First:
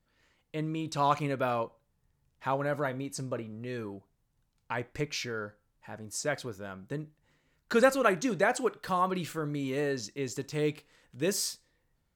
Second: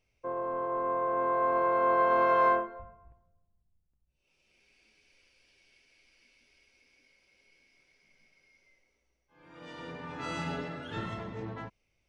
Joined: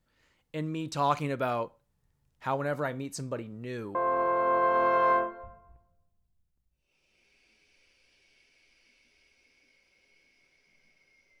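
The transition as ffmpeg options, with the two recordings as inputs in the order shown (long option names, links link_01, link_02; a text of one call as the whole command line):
ffmpeg -i cue0.wav -i cue1.wav -filter_complex "[0:a]apad=whole_dur=11.4,atrim=end=11.4,atrim=end=3.952[link_01];[1:a]atrim=start=1.308:end=8.76[link_02];[link_01][link_02]acrossfade=duration=0.004:curve1=hsin:curve2=hsin" out.wav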